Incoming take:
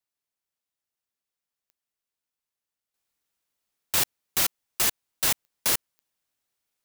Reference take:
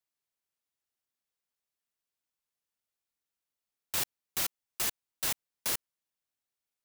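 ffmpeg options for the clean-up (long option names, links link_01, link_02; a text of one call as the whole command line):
ffmpeg -i in.wav -af "adeclick=threshold=4,asetnsamples=nb_out_samples=441:pad=0,asendcmd='2.94 volume volume -8dB',volume=0dB" out.wav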